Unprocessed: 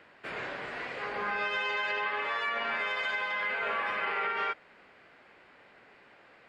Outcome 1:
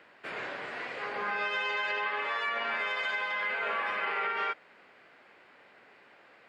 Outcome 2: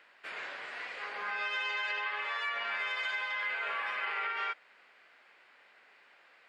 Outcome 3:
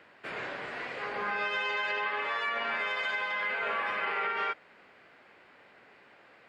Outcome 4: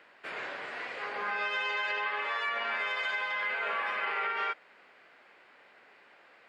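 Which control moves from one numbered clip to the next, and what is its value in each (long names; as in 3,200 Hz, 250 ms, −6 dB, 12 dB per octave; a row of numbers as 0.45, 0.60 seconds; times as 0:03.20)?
high-pass filter, corner frequency: 190, 1,500, 73, 480 Hertz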